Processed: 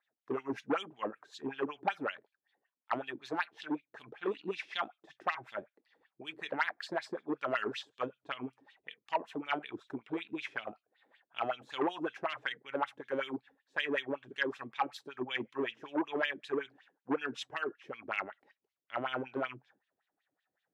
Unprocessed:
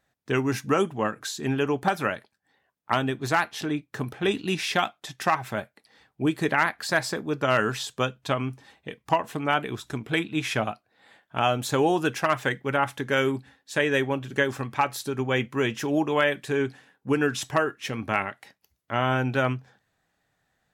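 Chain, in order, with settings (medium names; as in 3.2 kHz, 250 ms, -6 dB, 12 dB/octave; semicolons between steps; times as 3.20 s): wah-wah 5.3 Hz 290–3500 Hz, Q 3.5; transformer saturation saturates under 1.1 kHz; trim -1.5 dB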